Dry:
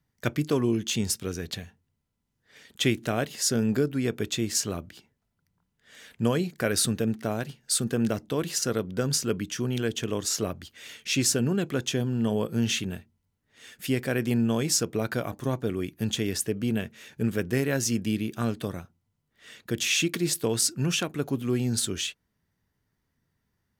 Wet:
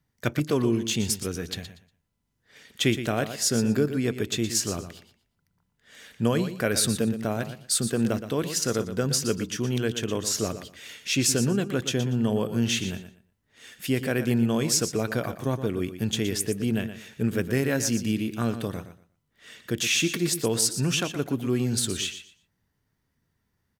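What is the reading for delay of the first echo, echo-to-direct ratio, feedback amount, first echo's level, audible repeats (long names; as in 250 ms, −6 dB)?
119 ms, −11.0 dB, 21%, −11.0 dB, 2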